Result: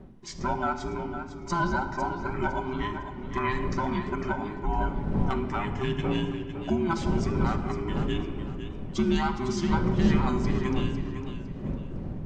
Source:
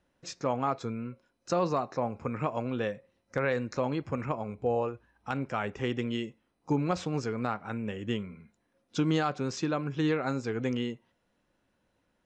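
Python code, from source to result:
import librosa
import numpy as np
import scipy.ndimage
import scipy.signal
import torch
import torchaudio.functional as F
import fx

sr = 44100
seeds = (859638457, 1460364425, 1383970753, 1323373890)

y = fx.band_invert(x, sr, width_hz=500)
y = fx.dmg_wind(y, sr, seeds[0], corner_hz=200.0, level_db=-35.0)
y = fx.peak_eq(y, sr, hz=660.0, db=12.0, octaves=1.5, at=(6.04, 6.7))
y = fx.room_shoebox(y, sr, seeds[1], volume_m3=3100.0, walls='mixed', distance_m=1.1)
y = fx.echo_warbled(y, sr, ms=505, feedback_pct=32, rate_hz=2.8, cents=71, wet_db=-10.0)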